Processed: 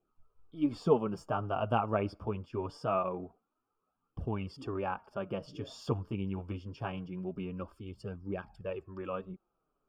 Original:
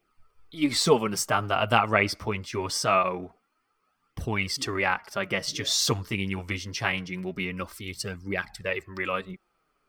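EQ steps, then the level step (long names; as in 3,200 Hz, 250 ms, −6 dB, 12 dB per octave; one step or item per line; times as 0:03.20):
moving average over 22 samples
−4.5 dB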